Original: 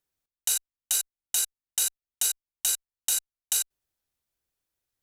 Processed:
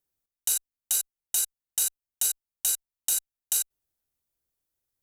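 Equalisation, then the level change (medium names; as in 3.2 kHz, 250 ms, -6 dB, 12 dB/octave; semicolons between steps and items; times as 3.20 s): tilt shelf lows +5 dB, about 1.3 kHz; treble shelf 2.8 kHz +6.5 dB; treble shelf 8.1 kHz +7 dB; -5.0 dB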